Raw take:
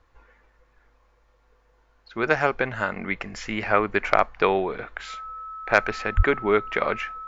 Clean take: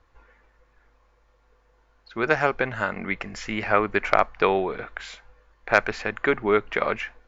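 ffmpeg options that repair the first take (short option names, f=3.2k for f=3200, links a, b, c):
-filter_complex "[0:a]bandreject=f=1.3k:w=30,asplit=3[a][b][c];[a]afade=t=out:st=6.16:d=0.02[d];[b]highpass=f=140:w=0.5412,highpass=f=140:w=1.3066,afade=t=in:st=6.16:d=0.02,afade=t=out:st=6.28:d=0.02[e];[c]afade=t=in:st=6.28:d=0.02[f];[d][e][f]amix=inputs=3:normalize=0"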